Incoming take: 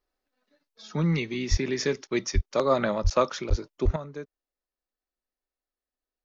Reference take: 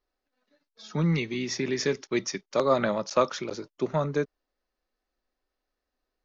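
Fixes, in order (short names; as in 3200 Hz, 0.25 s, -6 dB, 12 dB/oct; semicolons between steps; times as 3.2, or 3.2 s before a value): de-plosive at 1.5/2.34/3.03/3.49/3.84; gain correction +11 dB, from 3.96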